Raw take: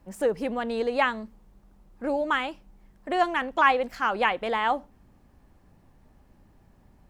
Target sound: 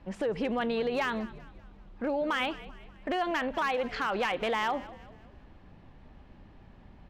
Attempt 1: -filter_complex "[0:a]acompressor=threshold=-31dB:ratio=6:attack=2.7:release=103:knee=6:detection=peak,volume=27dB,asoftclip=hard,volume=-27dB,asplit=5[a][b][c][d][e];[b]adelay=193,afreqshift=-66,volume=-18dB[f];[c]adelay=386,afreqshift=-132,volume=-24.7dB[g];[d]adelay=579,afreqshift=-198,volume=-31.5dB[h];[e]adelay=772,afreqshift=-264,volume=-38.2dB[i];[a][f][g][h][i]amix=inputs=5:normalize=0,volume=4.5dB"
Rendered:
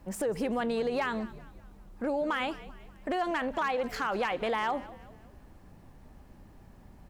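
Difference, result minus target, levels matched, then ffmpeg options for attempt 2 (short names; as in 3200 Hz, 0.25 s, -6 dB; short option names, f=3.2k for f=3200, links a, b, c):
4000 Hz band -3.0 dB
-filter_complex "[0:a]acompressor=threshold=-31dB:ratio=6:attack=2.7:release=103:knee=6:detection=peak,lowpass=f=3.3k:t=q:w=1.6,volume=27dB,asoftclip=hard,volume=-27dB,asplit=5[a][b][c][d][e];[b]adelay=193,afreqshift=-66,volume=-18dB[f];[c]adelay=386,afreqshift=-132,volume=-24.7dB[g];[d]adelay=579,afreqshift=-198,volume=-31.5dB[h];[e]adelay=772,afreqshift=-264,volume=-38.2dB[i];[a][f][g][h][i]amix=inputs=5:normalize=0,volume=4.5dB"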